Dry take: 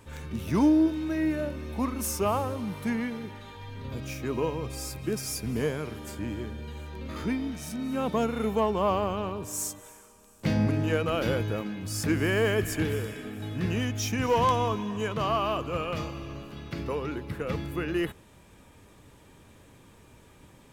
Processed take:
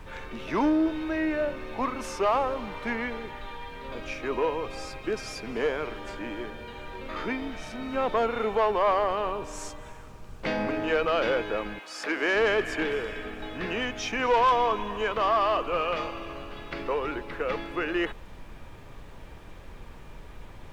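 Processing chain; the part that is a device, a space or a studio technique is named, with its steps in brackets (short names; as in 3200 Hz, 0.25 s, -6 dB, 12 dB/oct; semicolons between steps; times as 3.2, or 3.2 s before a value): aircraft cabin announcement (BPF 470–3100 Hz; soft clip -23.5 dBFS, distortion -15 dB; brown noise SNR 13 dB); 11.78–12.34 HPF 800 Hz -> 230 Hz 12 dB/oct; gain +7 dB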